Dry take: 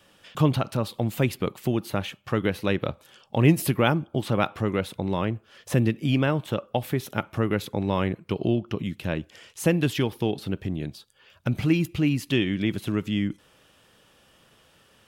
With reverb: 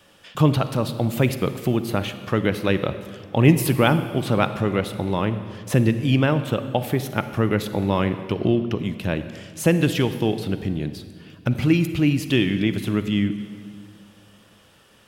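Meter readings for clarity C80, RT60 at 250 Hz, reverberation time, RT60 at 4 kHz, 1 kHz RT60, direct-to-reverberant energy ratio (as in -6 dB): 12.5 dB, 2.5 s, 2.1 s, 1.6 s, 1.9 s, 10.5 dB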